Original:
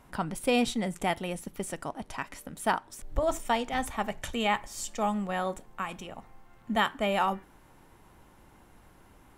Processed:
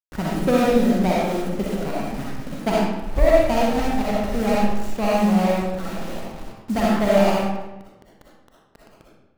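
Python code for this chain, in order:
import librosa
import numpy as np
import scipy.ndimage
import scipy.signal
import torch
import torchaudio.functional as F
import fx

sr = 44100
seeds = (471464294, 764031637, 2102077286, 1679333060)

y = scipy.signal.medfilt(x, 41)
y = fx.quant_dither(y, sr, seeds[0], bits=8, dither='none')
y = fx.rev_freeverb(y, sr, rt60_s=1.0, hf_ratio=0.75, predelay_ms=20, drr_db=-5.5)
y = F.gain(torch.from_numpy(y), 7.5).numpy()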